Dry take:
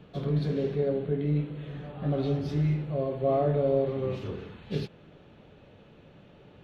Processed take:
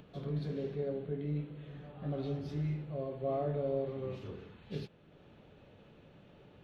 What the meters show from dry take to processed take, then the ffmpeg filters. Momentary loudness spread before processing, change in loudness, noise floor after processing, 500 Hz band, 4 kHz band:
12 LU, -9.0 dB, -60 dBFS, -9.0 dB, -9.0 dB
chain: -af "acompressor=mode=upward:threshold=0.00794:ratio=2.5,volume=0.355"

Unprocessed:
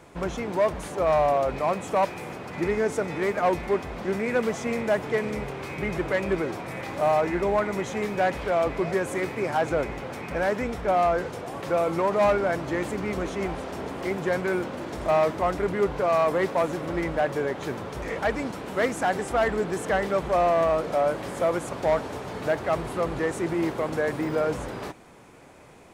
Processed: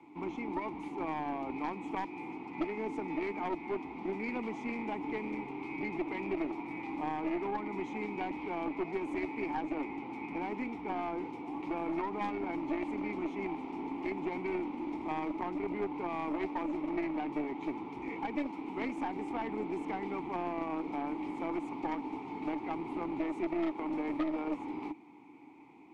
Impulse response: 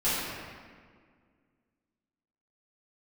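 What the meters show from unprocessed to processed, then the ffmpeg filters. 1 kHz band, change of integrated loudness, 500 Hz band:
-10.5 dB, -11.0 dB, -15.0 dB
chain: -filter_complex "[0:a]asplit=3[s0][s1][s2];[s0]bandpass=f=300:t=q:w=8,volume=1[s3];[s1]bandpass=f=870:t=q:w=8,volume=0.501[s4];[s2]bandpass=f=2240:t=q:w=8,volume=0.355[s5];[s3][s4][s5]amix=inputs=3:normalize=0,aeval=exprs='0.0668*(cos(1*acos(clip(val(0)/0.0668,-1,1)))-cos(1*PI/2))+0.00299*(cos(4*acos(clip(val(0)/0.0668,-1,1)))-cos(4*PI/2))+0.0168*(cos(6*acos(clip(val(0)/0.0668,-1,1)))-cos(6*PI/2))+0.00841*(cos(8*acos(clip(val(0)/0.0668,-1,1)))-cos(8*PI/2))':c=same,acrossover=split=190|380[s6][s7][s8];[s6]acompressor=threshold=0.00178:ratio=4[s9];[s7]acompressor=threshold=0.00631:ratio=4[s10];[s8]acompressor=threshold=0.00891:ratio=4[s11];[s9][s10][s11]amix=inputs=3:normalize=0,volume=2"

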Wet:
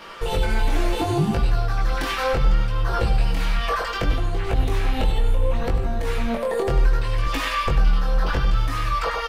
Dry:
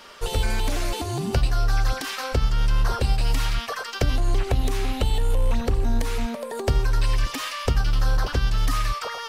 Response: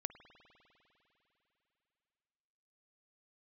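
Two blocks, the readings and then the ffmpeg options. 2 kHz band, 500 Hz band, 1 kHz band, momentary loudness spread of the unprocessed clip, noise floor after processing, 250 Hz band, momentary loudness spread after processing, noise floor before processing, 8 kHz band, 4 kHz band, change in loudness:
+3.0 dB, +4.5 dB, +4.5 dB, 4 LU, -27 dBFS, +3.0 dB, 3 LU, -34 dBFS, -5.0 dB, -0.5 dB, +2.0 dB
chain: -filter_complex "[0:a]aecho=1:1:6:0.47,alimiter=limit=0.112:level=0:latency=1:release=65,aecho=1:1:98:0.299,flanger=delay=18.5:depth=4.7:speed=0.68,asplit=2[s0][s1];[1:a]atrim=start_sample=2205,lowpass=3600[s2];[s1][s2]afir=irnorm=-1:irlink=0,volume=1.88[s3];[s0][s3]amix=inputs=2:normalize=0,volume=1.26"

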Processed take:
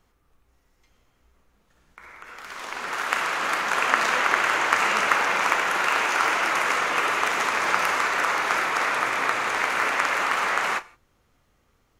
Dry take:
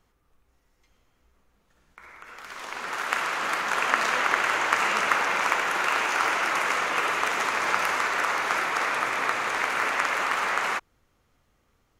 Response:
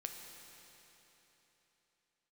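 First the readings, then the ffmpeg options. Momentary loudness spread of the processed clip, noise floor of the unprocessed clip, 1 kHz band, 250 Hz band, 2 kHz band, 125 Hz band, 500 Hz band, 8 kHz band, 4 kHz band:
6 LU, -69 dBFS, +2.0 dB, +2.5 dB, +2.0 dB, +2.0 dB, +2.0 dB, +2.0 dB, +2.0 dB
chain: -filter_complex "[0:a]asplit=2[s0][s1];[1:a]atrim=start_sample=2205,afade=t=out:st=0.19:d=0.01,atrim=end_sample=8820,adelay=33[s2];[s1][s2]afir=irnorm=-1:irlink=0,volume=0.299[s3];[s0][s3]amix=inputs=2:normalize=0,volume=1.26"

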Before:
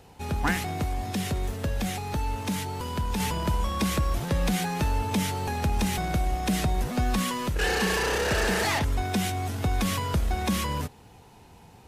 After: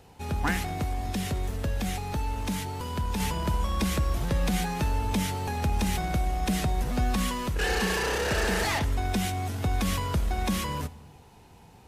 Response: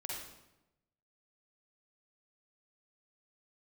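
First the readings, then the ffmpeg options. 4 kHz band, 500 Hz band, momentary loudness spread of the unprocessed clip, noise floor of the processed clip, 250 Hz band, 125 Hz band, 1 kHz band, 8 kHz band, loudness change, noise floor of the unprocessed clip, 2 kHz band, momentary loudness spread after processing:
-2.0 dB, -2.0 dB, 6 LU, -53 dBFS, -1.5 dB, -0.5 dB, -1.5 dB, -2.0 dB, -1.0 dB, -52 dBFS, -1.5 dB, 5 LU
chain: -filter_complex "[0:a]asplit=2[s0][s1];[1:a]atrim=start_sample=2205,lowshelf=f=120:g=11[s2];[s1][s2]afir=irnorm=-1:irlink=0,volume=0.15[s3];[s0][s3]amix=inputs=2:normalize=0,volume=0.75"

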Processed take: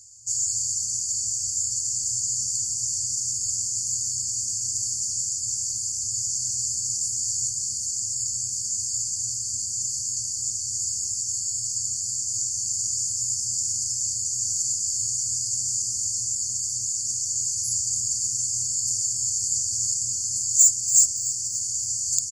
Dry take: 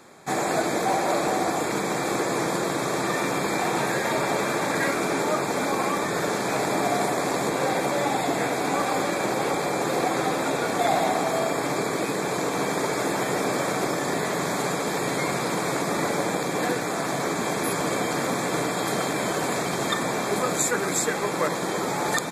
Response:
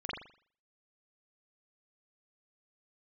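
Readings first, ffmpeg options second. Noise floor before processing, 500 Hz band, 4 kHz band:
-28 dBFS, under -40 dB, +0.5 dB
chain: -filter_complex "[0:a]lowpass=f=7000:t=q:w=5.2,afftfilt=real='re*(1-between(b*sr/4096,120,4400))':imag='im*(1-between(b*sr/4096,120,4400))':win_size=4096:overlap=0.75,asoftclip=type=tanh:threshold=0.335,asplit=2[s0][s1];[s1]asplit=4[s2][s3][s4][s5];[s2]adelay=285,afreqshift=93,volume=0.2[s6];[s3]adelay=570,afreqshift=186,volume=0.0841[s7];[s4]adelay=855,afreqshift=279,volume=0.0351[s8];[s5]adelay=1140,afreqshift=372,volume=0.0148[s9];[s6][s7][s8][s9]amix=inputs=4:normalize=0[s10];[s0][s10]amix=inputs=2:normalize=0,volume=1.19"

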